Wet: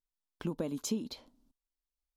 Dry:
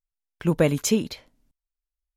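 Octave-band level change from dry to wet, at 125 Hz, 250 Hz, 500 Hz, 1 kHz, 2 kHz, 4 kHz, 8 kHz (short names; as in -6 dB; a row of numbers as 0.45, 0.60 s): -16.5, -12.0, -16.0, -14.0, -19.5, -11.0, -12.5 dB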